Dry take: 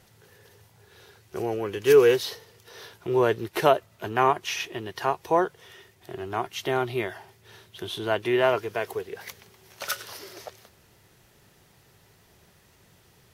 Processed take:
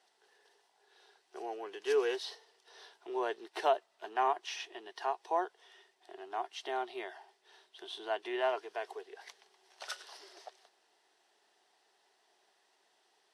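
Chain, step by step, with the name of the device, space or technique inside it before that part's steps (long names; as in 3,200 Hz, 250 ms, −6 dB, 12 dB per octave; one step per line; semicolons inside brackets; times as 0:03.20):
phone speaker on a table (loudspeaker in its box 400–8,500 Hz, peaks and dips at 520 Hz −10 dB, 750 Hz +5 dB, 1,300 Hz −5 dB, 2,300 Hz −6 dB, 6,800 Hz −7 dB)
level −8.5 dB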